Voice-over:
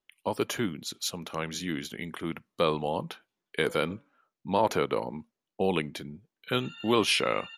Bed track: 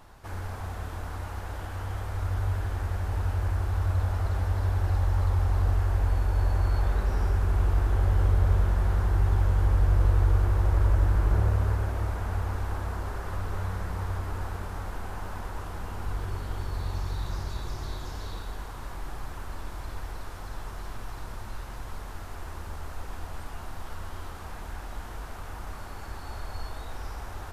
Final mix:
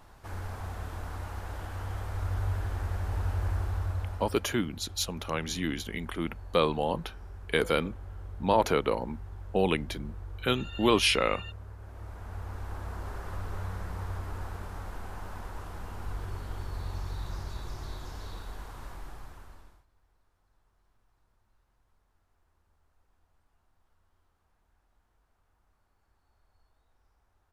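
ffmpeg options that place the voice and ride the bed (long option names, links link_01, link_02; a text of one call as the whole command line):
ffmpeg -i stem1.wav -i stem2.wav -filter_complex "[0:a]adelay=3950,volume=1dB[link_01];[1:a]volume=12.5dB,afade=type=out:start_time=3.56:duration=0.93:silence=0.141254,afade=type=in:start_time=11.77:duration=1.36:silence=0.177828,afade=type=out:start_time=18.84:duration=1.01:silence=0.0354813[link_02];[link_01][link_02]amix=inputs=2:normalize=0" out.wav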